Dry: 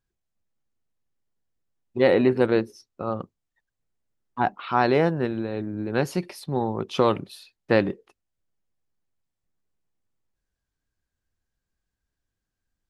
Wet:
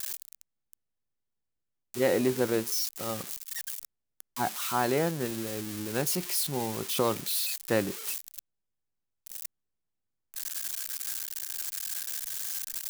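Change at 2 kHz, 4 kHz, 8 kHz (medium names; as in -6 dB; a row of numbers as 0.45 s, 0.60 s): -5.5 dB, +4.0 dB, +18.5 dB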